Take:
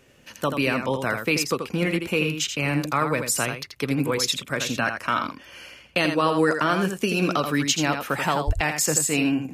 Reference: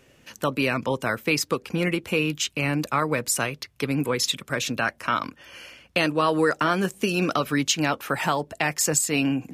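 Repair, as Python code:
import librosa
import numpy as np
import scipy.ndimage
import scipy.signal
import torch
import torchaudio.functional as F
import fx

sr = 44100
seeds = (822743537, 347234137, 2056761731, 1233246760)

y = fx.fix_deplosive(x, sr, at_s=(8.46,))
y = fx.fix_echo_inverse(y, sr, delay_ms=83, level_db=-7.0)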